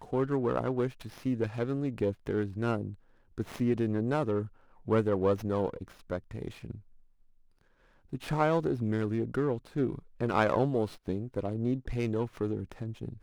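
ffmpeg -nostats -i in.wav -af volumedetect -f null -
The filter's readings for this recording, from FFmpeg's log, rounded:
mean_volume: -31.6 dB
max_volume: -12.6 dB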